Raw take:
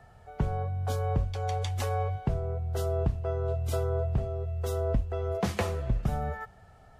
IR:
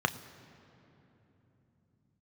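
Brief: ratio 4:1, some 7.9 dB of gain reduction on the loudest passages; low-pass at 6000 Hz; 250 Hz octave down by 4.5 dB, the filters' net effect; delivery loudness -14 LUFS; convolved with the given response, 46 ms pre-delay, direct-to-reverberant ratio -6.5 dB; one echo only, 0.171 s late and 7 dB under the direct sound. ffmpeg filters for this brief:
-filter_complex "[0:a]lowpass=6k,equalizer=f=250:t=o:g=-8,acompressor=threshold=-32dB:ratio=4,aecho=1:1:171:0.447,asplit=2[a][b];[1:a]atrim=start_sample=2205,adelay=46[c];[b][c]afir=irnorm=-1:irlink=0,volume=-3dB[d];[a][d]amix=inputs=2:normalize=0,volume=13.5dB"

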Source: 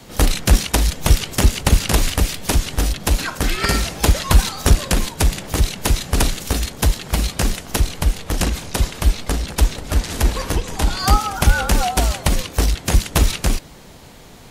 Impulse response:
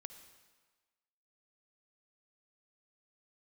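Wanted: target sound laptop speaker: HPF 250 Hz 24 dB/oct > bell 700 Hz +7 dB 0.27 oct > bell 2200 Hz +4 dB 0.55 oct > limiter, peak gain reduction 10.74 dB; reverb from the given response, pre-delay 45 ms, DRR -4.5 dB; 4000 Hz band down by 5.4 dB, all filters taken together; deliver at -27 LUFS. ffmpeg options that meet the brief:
-filter_complex "[0:a]equalizer=f=4k:t=o:g=-8,asplit=2[a][b];[1:a]atrim=start_sample=2205,adelay=45[c];[b][c]afir=irnorm=-1:irlink=0,volume=10dB[d];[a][d]amix=inputs=2:normalize=0,highpass=f=250:w=0.5412,highpass=f=250:w=1.3066,equalizer=f=700:t=o:w=0.27:g=7,equalizer=f=2.2k:t=o:w=0.55:g=4,volume=-7dB,alimiter=limit=-14.5dB:level=0:latency=1"

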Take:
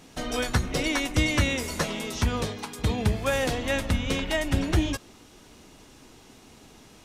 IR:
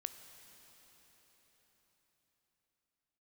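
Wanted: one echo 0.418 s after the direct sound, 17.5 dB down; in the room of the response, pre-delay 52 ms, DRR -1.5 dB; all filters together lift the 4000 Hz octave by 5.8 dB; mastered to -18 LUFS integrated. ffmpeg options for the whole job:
-filter_complex "[0:a]equalizer=f=4k:t=o:g=7.5,aecho=1:1:418:0.133,asplit=2[a][b];[1:a]atrim=start_sample=2205,adelay=52[c];[b][c]afir=irnorm=-1:irlink=0,volume=4dB[d];[a][d]amix=inputs=2:normalize=0,volume=3.5dB"

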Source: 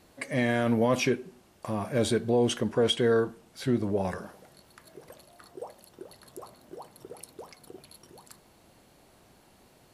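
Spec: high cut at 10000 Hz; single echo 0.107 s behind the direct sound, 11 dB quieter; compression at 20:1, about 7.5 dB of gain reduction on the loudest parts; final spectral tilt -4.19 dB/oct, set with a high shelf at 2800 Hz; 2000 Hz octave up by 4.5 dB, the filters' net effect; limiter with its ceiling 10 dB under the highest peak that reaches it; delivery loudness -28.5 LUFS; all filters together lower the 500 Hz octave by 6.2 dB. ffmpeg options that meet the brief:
-af "lowpass=10k,equalizer=f=500:t=o:g=-7.5,equalizer=f=2k:t=o:g=8,highshelf=f=2.8k:g=-5,acompressor=threshold=-29dB:ratio=20,alimiter=level_in=4dB:limit=-24dB:level=0:latency=1,volume=-4dB,aecho=1:1:107:0.282,volume=11dB"

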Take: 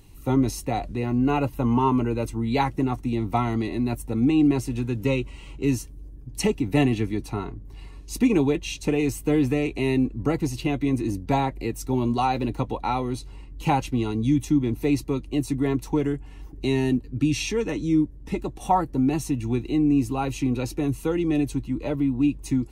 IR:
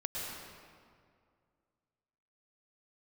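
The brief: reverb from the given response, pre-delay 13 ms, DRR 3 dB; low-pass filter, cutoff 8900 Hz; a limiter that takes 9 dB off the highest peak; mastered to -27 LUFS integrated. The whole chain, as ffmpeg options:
-filter_complex "[0:a]lowpass=8.9k,alimiter=limit=-17.5dB:level=0:latency=1,asplit=2[a][b];[1:a]atrim=start_sample=2205,adelay=13[c];[b][c]afir=irnorm=-1:irlink=0,volume=-6dB[d];[a][d]amix=inputs=2:normalize=0,volume=-1dB"

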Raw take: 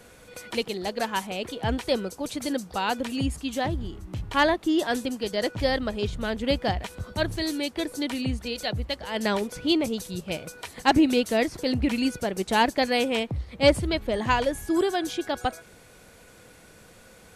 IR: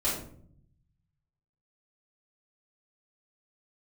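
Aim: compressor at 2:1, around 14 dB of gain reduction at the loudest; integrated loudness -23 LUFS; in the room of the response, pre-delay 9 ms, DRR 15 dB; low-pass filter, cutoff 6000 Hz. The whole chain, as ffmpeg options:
-filter_complex "[0:a]lowpass=6k,acompressor=threshold=-41dB:ratio=2,asplit=2[a][b];[1:a]atrim=start_sample=2205,adelay=9[c];[b][c]afir=irnorm=-1:irlink=0,volume=-23.5dB[d];[a][d]amix=inputs=2:normalize=0,volume=14dB"

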